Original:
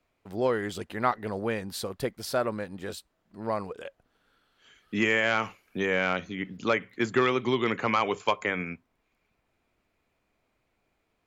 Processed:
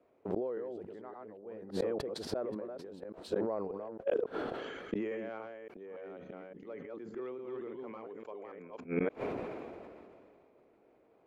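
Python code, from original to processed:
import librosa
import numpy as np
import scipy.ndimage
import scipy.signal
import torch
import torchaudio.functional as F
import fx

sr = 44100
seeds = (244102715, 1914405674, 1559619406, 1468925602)

y = fx.reverse_delay(x, sr, ms=284, wet_db=-0.5)
y = fx.bandpass_q(y, sr, hz=440.0, q=1.7)
y = fx.gate_flip(y, sr, shuts_db=-33.0, range_db=-30)
y = fx.sustainer(y, sr, db_per_s=24.0)
y = F.gain(torch.from_numpy(y), 12.5).numpy()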